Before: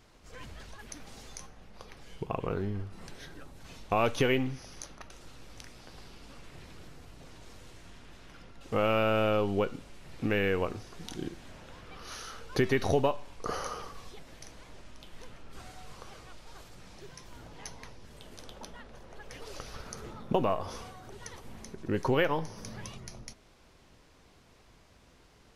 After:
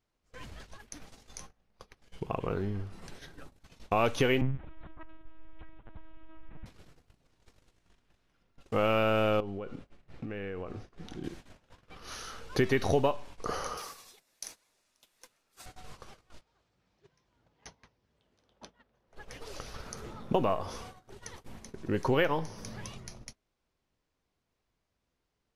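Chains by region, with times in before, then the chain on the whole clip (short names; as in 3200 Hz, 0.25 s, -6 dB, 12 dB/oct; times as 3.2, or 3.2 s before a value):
4.41–6.66 LPF 1700 Hz + resonant low shelf 150 Hz +7.5 dB, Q 1.5 + LPC vocoder at 8 kHz pitch kept
9.4–11.24 LPF 1800 Hz 6 dB/oct + notch 950 Hz, Q 13 + compressor 12:1, threshold -34 dBFS
13.77–15.66 RIAA curve recording + notch 3100 Hz, Q 14
16.41–19.07 HPF 52 Hz + air absorption 76 m
whole clip: gate -45 dBFS, range -22 dB; ending taper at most 540 dB/s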